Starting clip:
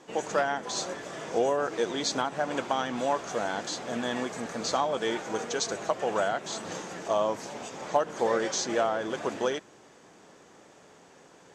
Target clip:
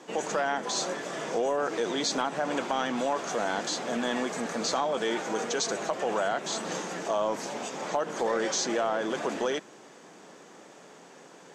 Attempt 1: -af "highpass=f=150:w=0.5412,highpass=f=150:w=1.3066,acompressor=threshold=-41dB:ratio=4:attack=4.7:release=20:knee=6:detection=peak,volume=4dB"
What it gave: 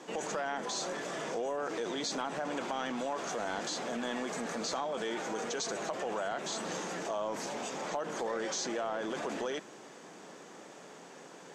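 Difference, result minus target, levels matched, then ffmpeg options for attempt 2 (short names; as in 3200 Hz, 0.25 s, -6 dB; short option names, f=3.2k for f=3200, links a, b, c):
compressor: peak gain reduction +7.5 dB
-af "highpass=f=150:w=0.5412,highpass=f=150:w=1.3066,acompressor=threshold=-31dB:ratio=4:attack=4.7:release=20:knee=6:detection=peak,volume=4dB"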